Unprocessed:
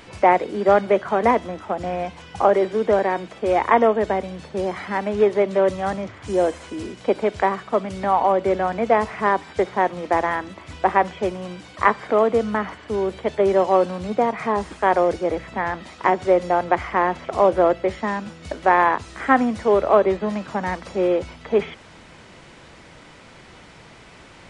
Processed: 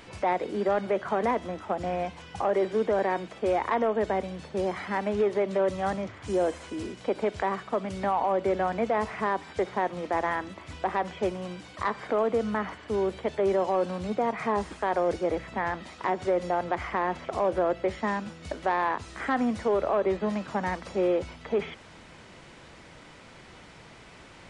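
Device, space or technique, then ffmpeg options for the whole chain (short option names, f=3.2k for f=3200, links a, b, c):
soft clipper into limiter: -af "asoftclip=type=tanh:threshold=-5.5dB,alimiter=limit=-13.5dB:level=0:latency=1:release=87,volume=-4dB"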